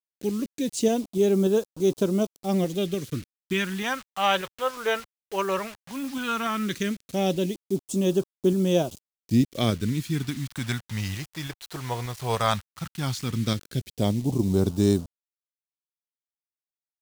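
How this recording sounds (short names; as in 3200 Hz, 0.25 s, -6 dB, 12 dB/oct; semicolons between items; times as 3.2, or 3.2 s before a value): tremolo saw up 3.4 Hz, depth 30%; a quantiser's noise floor 8-bit, dither none; phasing stages 2, 0.15 Hz, lowest notch 230–1900 Hz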